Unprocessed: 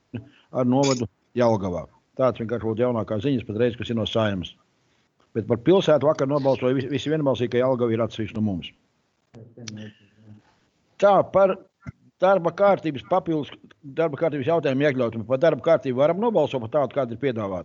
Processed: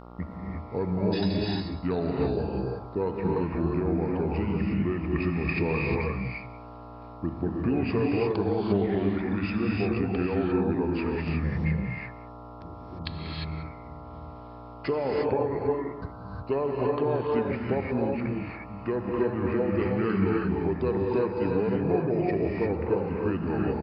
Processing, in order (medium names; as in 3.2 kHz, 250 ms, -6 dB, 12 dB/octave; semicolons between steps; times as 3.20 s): delay 139 ms -19.5 dB; speed mistake 45 rpm record played at 33 rpm; mains buzz 60 Hz, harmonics 23, -44 dBFS -3 dB/octave; compression 4:1, threshold -25 dBFS, peak gain reduction 11.5 dB; gated-style reverb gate 380 ms rising, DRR -2 dB; trim -1.5 dB